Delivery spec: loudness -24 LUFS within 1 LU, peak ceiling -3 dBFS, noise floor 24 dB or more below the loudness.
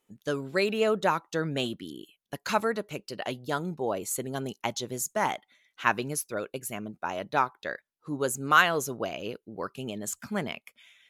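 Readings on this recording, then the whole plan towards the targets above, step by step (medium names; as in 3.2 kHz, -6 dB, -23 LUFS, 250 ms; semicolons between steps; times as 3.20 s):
loudness -30.0 LUFS; peak level -6.0 dBFS; loudness target -24.0 LUFS
-> trim +6 dB; peak limiter -3 dBFS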